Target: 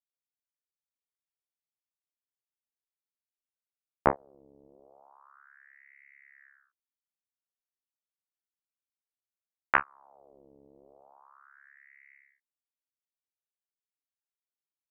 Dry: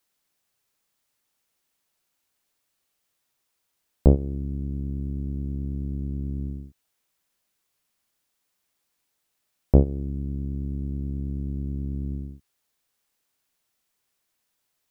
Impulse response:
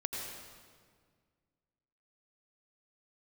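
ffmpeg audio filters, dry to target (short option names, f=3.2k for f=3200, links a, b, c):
-af "equalizer=f=88:w=1.5:g=-3.5,aeval=exprs='0.708*(cos(1*acos(clip(val(0)/0.708,-1,1)))-cos(1*PI/2))+0.224*(cos(3*acos(clip(val(0)/0.708,-1,1)))-cos(3*PI/2))+0.0178*(cos(6*acos(clip(val(0)/0.708,-1,1)))-cos(6*PI/2))':c=same,aeval=exprs='val(0)*sin(2*PI*1200*n/s+1200*0.7/0.33*sin(2*PI*0.33*n/s))':c=same"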